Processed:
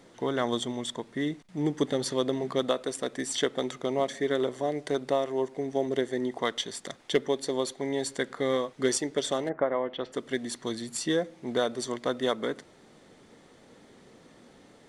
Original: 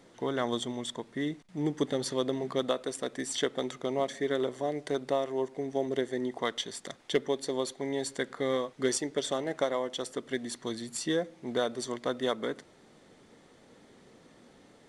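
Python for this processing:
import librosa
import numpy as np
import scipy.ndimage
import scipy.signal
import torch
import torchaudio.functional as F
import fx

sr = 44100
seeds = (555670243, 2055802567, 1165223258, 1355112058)

y = fx.lowpass(x, sr, hz=fx.line((9.48, 1500.0), (10.12, 3800.0)), slope=24, at=(9.48, 10.12), fade=0.02)
y = y * 10.0 ** (2.5 / 20.0)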